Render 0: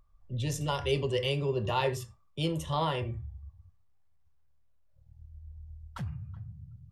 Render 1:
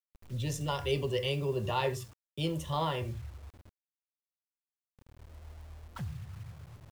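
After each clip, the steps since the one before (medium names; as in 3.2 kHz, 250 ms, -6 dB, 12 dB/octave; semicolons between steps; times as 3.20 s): bit crusher 9-bit; trim -2 dB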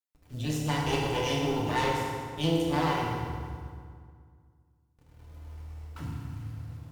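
Chebyshev shaper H 4 -7 dB, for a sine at -18 dBFS; FDN reverb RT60 2 s, low-frequency decay 1.25×, high-frequency decay 0.7×, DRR -4.5 dB; trim -5 dB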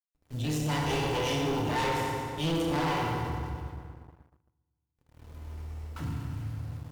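waveshaping leveller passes 3; trim -8.5 dB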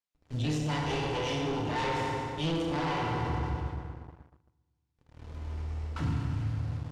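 low-pass 6.2 kHz 12 dB/octave; gain riding within 4 dB 0.5 s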